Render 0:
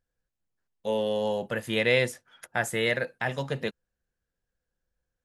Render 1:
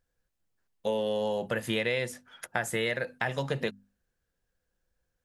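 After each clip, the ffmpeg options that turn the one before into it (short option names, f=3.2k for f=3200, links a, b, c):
-af "bandreject=f=50:t=h:w=6,bandreject=f=100:t=h:w=6,bandreject=f=150:t=h:w=6,bandreject=f=200:t=h:w=6,bandreject=f=250:t=h:w=6,acompressor=threshold=-30dB:ratio=6,volume=4dB"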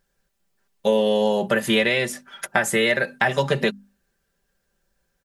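-af "lowshelf=f=77:g=-7,aecho=1:1:5.1:0.65,volume=9dB"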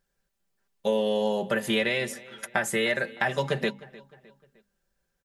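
-filter_complex "[0:a]asplit=2[a][b];[b]adelay=306,lowpass=f=4.5k:p=1,volume=-20dB,asplit=2[c][d];[d]adelay=306,lowpass=f=4.5k:p=1,volume=0.46,asplit=2[e][f];[f]adelay=306,lowpass=f=4.5k:p=1,volume=0.46[g];[a][c][e][g]amix=inputs=4:normalize=0,volume=-6dB"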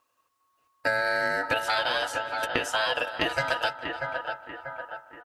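-filter_complex "[0:a]asplit=2[a][b];[b]adelay=639,lowpass=f=1k:p=1,volume=-8.5dB,asplit=2[c][d];[d]adelay=639,lowpass=f=1k:p=1,volume=0.55,asplit=2[e][f];[f]adelay=639,lowpass=f=1k:p=1,volume=0.55,asplit=2[g][h];[h]adelay=639,lowpass=f=1k:p=1,volume=0.55,asplit=2[i][j];[j]adelay=639,lowpass=f=1k:p=1,volume=0.55,asplit=2[k][l];[l]adelay=639,lowpass=f=1k:p=1,volume=0.55,asplit=2[m][n];[n]adelay=639,lowpass=f=1k:p=1,volume=0.55[o];[a][c][e][g][i][k][m][o]amix=inputs=8:normalize=0,aeval=exprs='val(0)*sin(2*PI*1100*n/s)':c=same,acrossover=split=1700|7200[p][q][r];[p]acompressor=threshold=-33dB:ratio=4[s];[q]acompressor=threshold=-36dB:ratio=4[t];[r]acompressor=threshold=-58dB:ratio=4[u];[s][t][u]amix=inputs=3:normalize=0,volume=7dB"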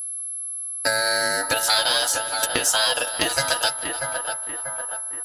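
-af "aeval=exprs='val(0)+0.00355*sin(2*PI*11000*n/s)':c=same,aexciter=amount=2.6:drive=9.6:freq=3.7k,volume=2.5dB"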